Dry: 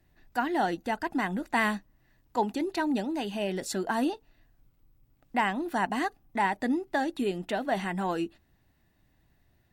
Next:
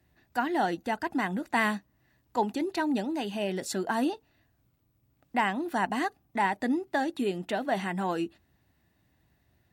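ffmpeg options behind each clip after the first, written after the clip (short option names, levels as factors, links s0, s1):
-af "highpass=f=53:w=0.5412,highpass=f=53:w=1.3066"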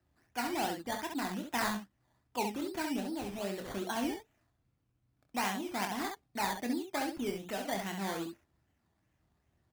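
-af "aresample=32000,aresample=44100,acrusher=samples=13:mix=1:aa=0.000001:lfo=1:lforange=7.8:lforate=2.5,aecho=1:1:25|67:0.398|0.531,volume=0.398"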